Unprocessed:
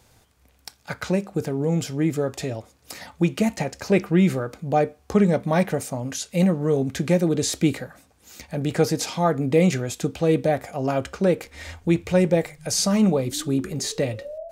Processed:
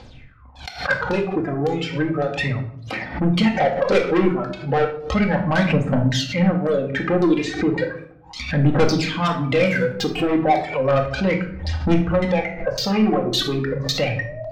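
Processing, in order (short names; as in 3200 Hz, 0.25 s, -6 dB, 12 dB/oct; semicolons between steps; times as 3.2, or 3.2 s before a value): median filter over 3 samples; 3.55–4.29 bell 510 Hz +12 dB 0.82 oct; in parallel at -1 dB: compressor, threshold -27 dBFS, peak gain reduction 18.5 dB; on the sum: phaser 0.34 Hz, delay 3 ms, feedback 66%; LFO low-pass saw down 1.8 Hz 840–4500 Hz; reverb removal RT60 1.9 s; 9.66–10.24 backlash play -35.5 dBFS; de-hum 89.68 Hz, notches 3; soft clip -14.5 dBFS, distortion -7 dB; 12.32–13.05 high shelf 3000 Hz -9 dB; shoebox room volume 1000 m³, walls furnished, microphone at 2.1 m; backwards sustainer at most 130 dB/s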